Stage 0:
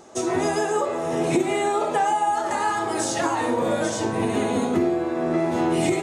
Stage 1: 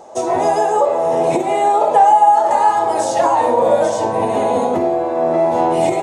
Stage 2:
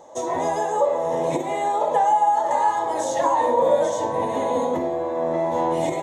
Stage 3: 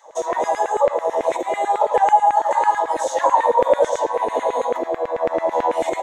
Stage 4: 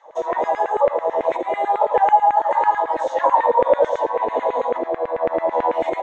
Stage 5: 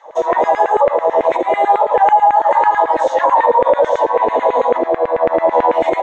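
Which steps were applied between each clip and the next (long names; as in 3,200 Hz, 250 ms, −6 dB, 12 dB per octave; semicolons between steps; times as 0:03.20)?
flat-topped bell 700 Hz +12 dB 1.3 octaves
EQ curve with evenly spaced ripples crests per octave 1.1, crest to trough 8 dB; level −7 dB
auto-filter high-pass saw down 9.1 Hz 340–2,100 Hz
low-pass filter 2,800 Hz 12 dB per octave
brickwall limiter −10.5 dBFS, peak gain reduction 6.5 dB; level +7.5 dB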